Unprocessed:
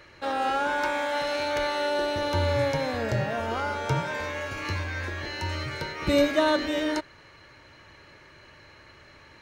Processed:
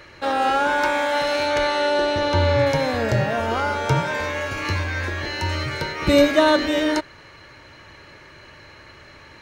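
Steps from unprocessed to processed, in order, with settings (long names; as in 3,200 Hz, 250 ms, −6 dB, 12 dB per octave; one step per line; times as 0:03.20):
0:01.46–0:02.65: low-pass filter 11,000 Hz → 5,200 Hz 12 dB per octave
level +6.5 dB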